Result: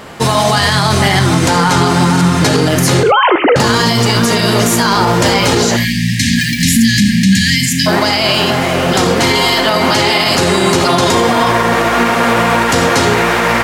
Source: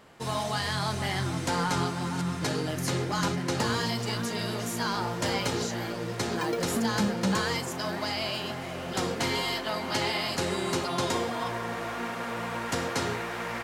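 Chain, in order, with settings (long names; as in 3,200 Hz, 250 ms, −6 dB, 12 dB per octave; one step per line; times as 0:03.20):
0:03.03–0:03.56: three sine waves on the formant tracks
0:05.76–0:07.87: time-frequency box erased 290–1,600 Hz
reverb whose tail is shaped and stops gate 100 ms rising, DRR 11.5 dB
boost into a limiter +23.5 dB
level −1 dB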